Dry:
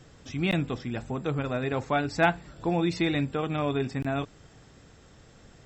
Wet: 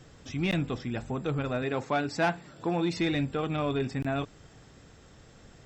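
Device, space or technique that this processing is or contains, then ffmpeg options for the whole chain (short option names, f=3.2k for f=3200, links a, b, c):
saturation between pre-emphasis and de-emphasis: -filter_complex "[0:a]highshelf=f=4.7k:g=6.5,asoftclip=type=tanh:threshold=-19dB,highshelf=f=4.7k:g=-6.5,asettb=1/sr,asplit=3[a][b][c];[a]atrim=end=1.624[d];[b]atrim=start=1.62:end=2.97,asetpts=PTS-STARTPTS,afade=t=in:d=0.004:c=qsin,afade=t=out:st=1.346:d=0.004:c=qsin,highpass=140[e];[c]atrim=start=2.966[f];[d][e]acrossfade=d=0.004:c1=hsin:c2=qsin[g];[g][f]acrossfade=d=0.004:c1=qsin:c2=hsin"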